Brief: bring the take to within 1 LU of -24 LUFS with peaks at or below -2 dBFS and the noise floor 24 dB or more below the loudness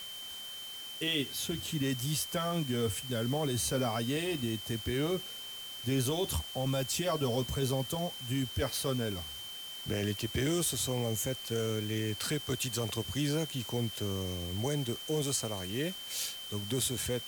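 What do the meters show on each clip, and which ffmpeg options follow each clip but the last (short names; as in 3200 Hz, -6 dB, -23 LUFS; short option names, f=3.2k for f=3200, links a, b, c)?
steady tone 3100 Hz; tone level -42 dBFS; noise floor -44 dBFS; noise floor target -58 dBFS; loudness -33.5 LUFS; peak -19.5 dBFS; loudness target -24.0 LUFS
-> -af "bandreject=f=3.1k:w=30"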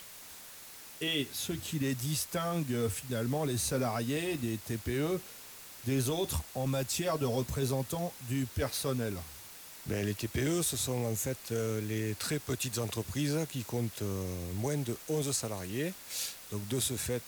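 steady tone none; noise floor -50 dBFS; noise floor target -58 dBFS
-> -af "afftdn=nr=8:nf=-50"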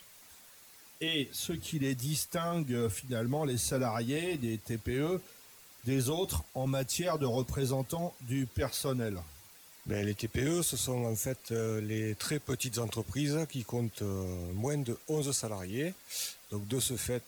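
noise floor -56 dBFS; noise floor target -58 dBFS
-> -af "afftdn=nr=6:nf=-56"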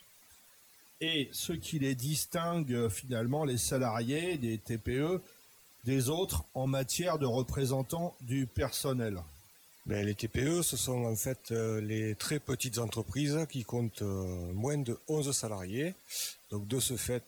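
noise floor -61 dBFS; loudness -34.0 LUFS; peak -20.0 dBFS; loudness target -24.0 LUFS
-> -af "volume=10dB"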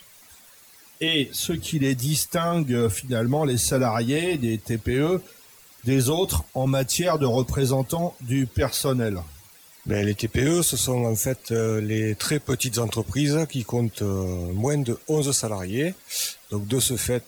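loudness -24.0 LUFS; peak -10.0 dBFS; noise floor -51 dBFS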